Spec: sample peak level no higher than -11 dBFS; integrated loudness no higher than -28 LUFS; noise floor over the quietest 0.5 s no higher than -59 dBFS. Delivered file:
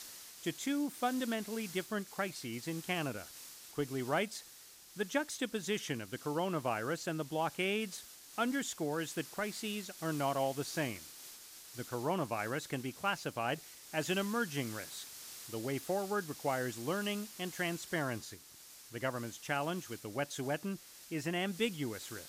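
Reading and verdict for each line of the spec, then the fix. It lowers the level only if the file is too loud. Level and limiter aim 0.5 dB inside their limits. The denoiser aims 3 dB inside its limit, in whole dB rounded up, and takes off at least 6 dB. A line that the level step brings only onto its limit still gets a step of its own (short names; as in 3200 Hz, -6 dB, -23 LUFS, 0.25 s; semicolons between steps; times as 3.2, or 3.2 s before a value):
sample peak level -20.5 dBFS: OK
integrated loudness -37.5 LUFS: OK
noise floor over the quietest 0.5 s -56 dBFS: fail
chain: denoiser 6 dB, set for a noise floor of -56 dBFS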